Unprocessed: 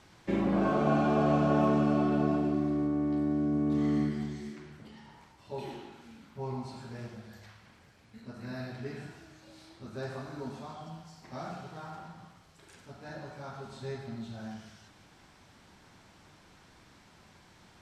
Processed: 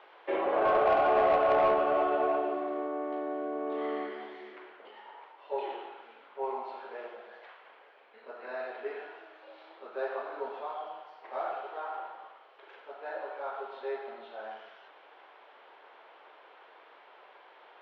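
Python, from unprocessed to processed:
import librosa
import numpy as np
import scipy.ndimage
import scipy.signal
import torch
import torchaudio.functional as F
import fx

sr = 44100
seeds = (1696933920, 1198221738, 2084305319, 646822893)

y = scipy.signal.sosfilt(scipy.signal.ellip(3, 1.0, 50, [430.0, 3200.0], 'bandpass', fs=sr, output='sos'), x)
y = fx.peak_eq(y, sr, hz=680.0, db=7.0, octaves=2.2)
y = 10.0 ** (-20.0 / 20.0) * np.tanh(y / 10.0 ** (-20.0 / 20.0))
y = y * librosa.db_to_amplitude(2.0)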